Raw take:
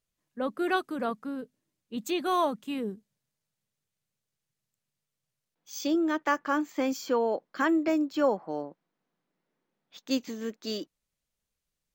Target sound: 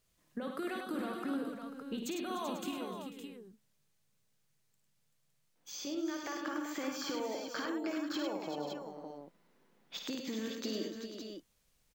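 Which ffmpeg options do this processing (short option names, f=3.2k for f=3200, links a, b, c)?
-filter_complex "[0:a]acrossover=split=1800|4800[a][b][c];[a]acompressor=threshold=-37dB:ratio=4[d];[b]acompressor=threshold=-48dB:ratio=4[e];[c]acompressor=threshold=-56dB:ratio=4[f];[d][e][f]amix=inputs=3:normalize=0,alimiter=level_in=9dB:limit=-24dB:level=0:latency=1,volume=-9dB,acompressor=threshold=-45dB:ratio=6,asettb=1/sr,asplit=3[g][h][i];[g]atrim=end=2.714[j];[h]atrim=start=2.71:end=5.87,asetpts=PTS-STARTPTS,afade=t=in:d=0.004:c=qsin,afade=t=out:st=3.156:d=0.004:c=qsin,flanger=delay=4.3:depth=4.9:regen=-71:speed=1.9:shape=triangular[k];[i]atrim=start=5.866[l];[j][k]acrossfade=d=0.004:c1=hsin:c2=qsin[m];[m][l]acrossfade=d=0.004:c1=qsin:c2=hsin,aecho=1:1:54|101|298|385|492|562:0.473|0.531|0.211|0.376|0.224|0.447,volume=8dB"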